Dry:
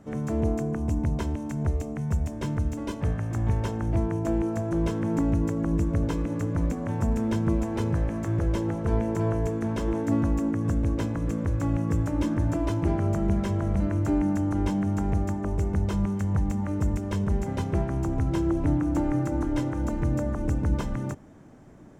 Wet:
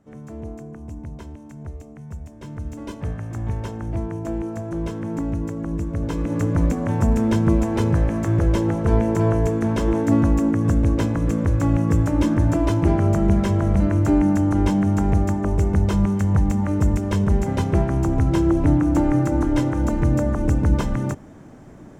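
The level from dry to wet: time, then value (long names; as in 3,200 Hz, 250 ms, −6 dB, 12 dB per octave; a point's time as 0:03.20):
0:02.37 −8.5 dB
0:02.81 −1 dB
0:05.93 −1 dB
0:06.40 +7 dB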